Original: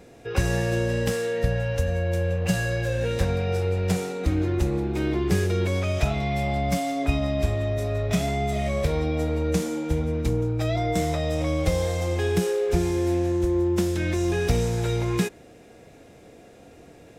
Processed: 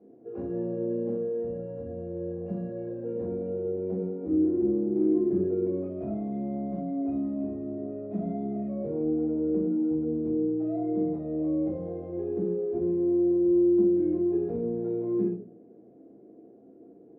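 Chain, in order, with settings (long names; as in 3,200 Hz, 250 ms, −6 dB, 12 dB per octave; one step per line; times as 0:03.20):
flat-topped band-pass 330 Hz, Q 1
rectangular room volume 290 cubic metres, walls furnished, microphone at 3.2 metres
level −8.5 dB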